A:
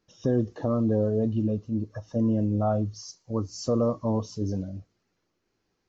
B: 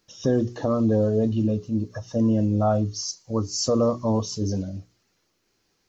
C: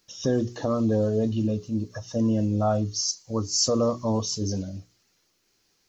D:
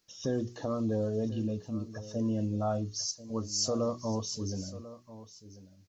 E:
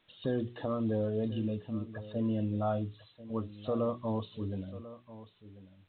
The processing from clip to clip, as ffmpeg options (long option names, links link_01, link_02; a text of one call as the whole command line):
ffmpeg -i in.wav -af "highshelf=frequency=2700:gain=10,bandreject=frequency=60:width_type=h:width=6,bandreject=frequency=120:width_type=h:width=6,bandreject=frequency=180:width_type=h:width=6,bandreject=frequency=240:width_type=h:width=6,bandreject=frequency=300:width_type=h:width=6,bandreject=frequency=360:width_type=h:width=6,bandreject=frequency=420:width_type=h:width=6,volume=3.5dB" out.wav
ffmpeg -i in.wav -af "highshelf=frequency=2500:gain=7.5,volume=-2.5dB" out.wav
ffmpeg -i in.wav -af "aecho=1:1:1041:0.158,volume=-7.5dB" out.wav
ffmpeg -i in.wav -af "aemphasis=mode=production:type=75fm" -ar 8000 -c:a pcm_alaw out.wav